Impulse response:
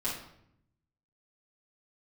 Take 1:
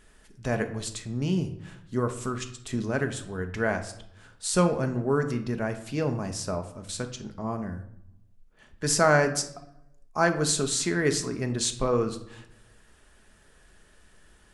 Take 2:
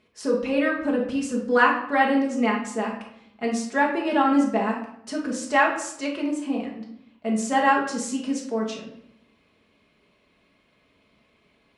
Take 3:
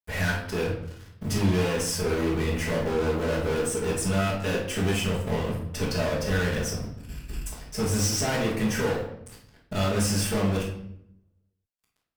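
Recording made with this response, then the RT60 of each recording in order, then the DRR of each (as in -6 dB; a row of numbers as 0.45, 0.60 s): 3; 0.75, 0.75, 0.70 s; 6.0, -3.0, -9.5 dB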